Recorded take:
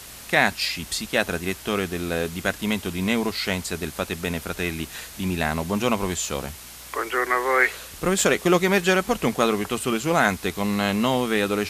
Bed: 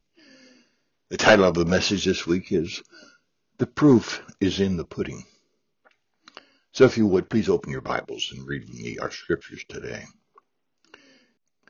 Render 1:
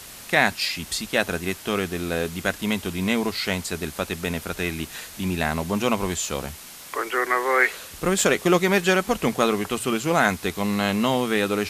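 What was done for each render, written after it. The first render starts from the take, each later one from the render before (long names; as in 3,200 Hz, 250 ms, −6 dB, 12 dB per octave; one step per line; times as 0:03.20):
hum removal 60 Hz, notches 2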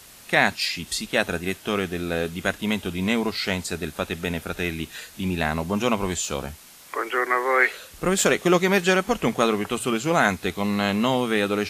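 noise reduction from a noise print 6 dB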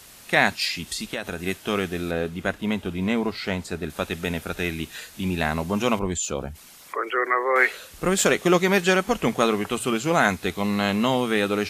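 0:00.81–0:01.45: downward compressor, threshold −25 dBFS
0:02.11–0:03.90: high-shelf EQ 2,800 Hz −9.5 dB
0:05.99–0:07.56: spectral envelope exaggerated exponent 1.5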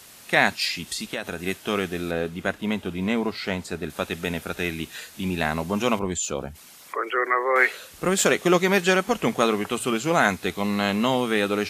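high-pass filter 100 Hz 6 dB per octave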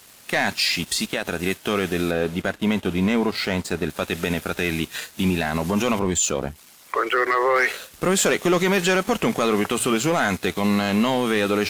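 leveller curve on the samples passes 2
brickwall limiter −12 dBFS, peak gain reduction 8.5 dB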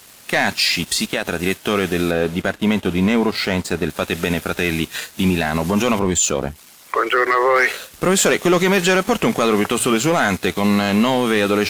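level +4 dB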